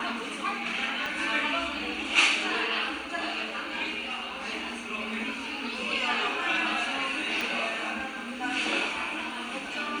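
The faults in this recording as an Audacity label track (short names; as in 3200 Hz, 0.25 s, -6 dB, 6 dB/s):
1.060000	1.060000	pop
7.410000	7.410000	pop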